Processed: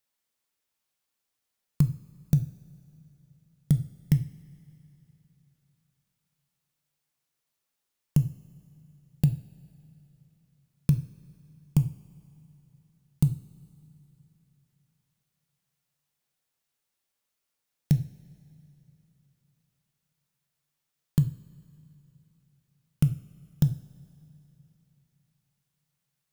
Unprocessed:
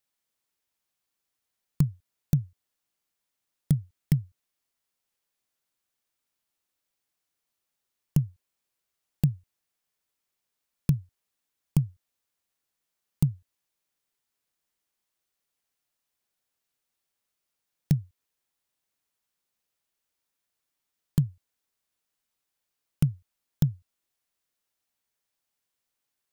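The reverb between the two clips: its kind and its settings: two-slope reverb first 0.44 s, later 3.3 s, from -18 dB, DRR 8 dB

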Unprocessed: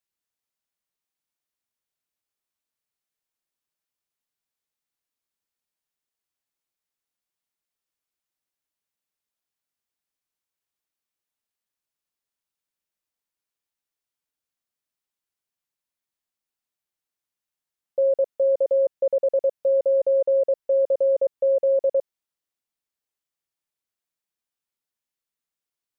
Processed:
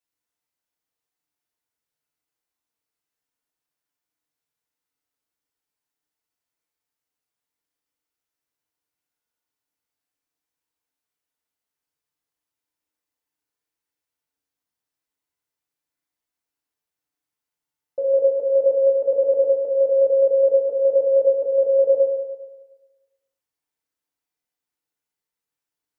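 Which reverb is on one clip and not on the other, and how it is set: FDN reverb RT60 1.2 s, low-frequency decay 0.75×, high-frequency decay 0.4×, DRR -5 dB; trim -3.5 dB

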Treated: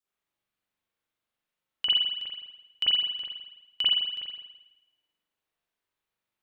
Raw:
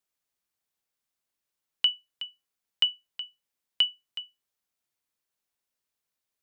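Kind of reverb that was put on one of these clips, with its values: spring tank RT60 1 s, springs 41 ms, chirp 25 ms, DRR -10 dB; trim -6.5 dB

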